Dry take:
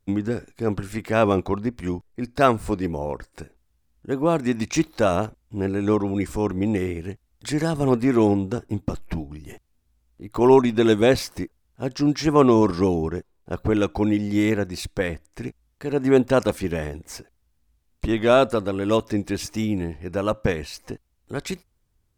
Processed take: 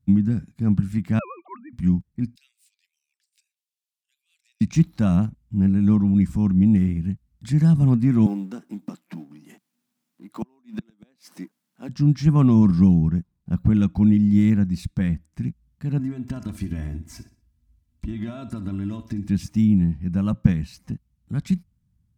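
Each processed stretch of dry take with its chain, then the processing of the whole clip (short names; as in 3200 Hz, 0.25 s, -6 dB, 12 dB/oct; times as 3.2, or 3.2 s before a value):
1.19–1.73 sine-wave speech + Bessel high-pass 770 Hz
2.35–4.61 compressor 2:1, threshold -46 dBFS + steep high-pass 2500 Hz
8.26–11.89 G.711 law mismatch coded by mu + HPF 300 Hz 24 dB/oct + flipped gate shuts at -10 dBFS, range -37 dB
15.99–19.28 comb 3 ms, depth 73% + compressor 8:1, threshold -25 dBFS + feedback echo 61 ms, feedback 36%, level -13 dB
whole clip: HPF 54 Hz; resonant low shelf 280 Hz +14 dB, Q 3; gain -9 dB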